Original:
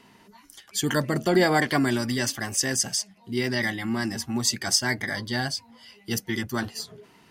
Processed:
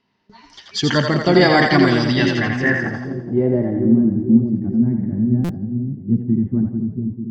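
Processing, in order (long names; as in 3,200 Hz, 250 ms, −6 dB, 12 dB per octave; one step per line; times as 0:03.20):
noise gate with hold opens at −43 dBFS
parametric band 77 Hz +3 dB 2.7 octaves
low-pass filter sweep 5,100 Hz → 220 Hz, 0:01.98–0:04.07
high-frequency loss of the air 140 metres
echo with a time of its own for lows and highs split 450 Hz, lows 444 ms, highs 84 ms, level −4.5 dB
buffer that repeats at 0:05.44, samples 256, times 8
level +6.5 dB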